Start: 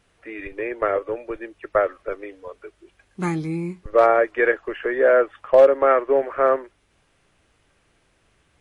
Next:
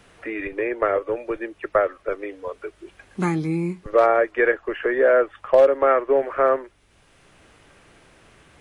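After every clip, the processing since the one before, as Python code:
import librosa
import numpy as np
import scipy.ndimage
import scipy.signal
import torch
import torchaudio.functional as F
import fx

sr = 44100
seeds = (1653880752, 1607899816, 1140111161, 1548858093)

y = fx.band_squash(x, sr, depth_pct=40)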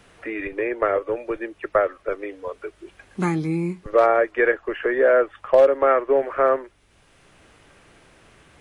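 y = x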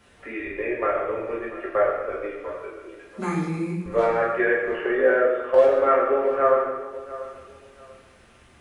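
y = fx.echo_feedback(x, sr, ms=690, feedback_pct=25, wet_db=-16.5)
y = fx.rev_fdn(y, sr, rt60_s=1.2, lf_ratio=1.25, hf_ratio=1.0, size_ms=78.0, drr_db=-5.0)
y = y * librosa.db_to_amplitude(-7.5)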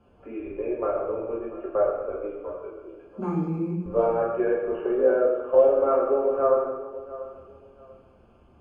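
y = np.convolve(x, np.full(23, 1.0 / 23))[:len(x)]
y = fx.hum_notches(y, sr, base_hz=60, count=2)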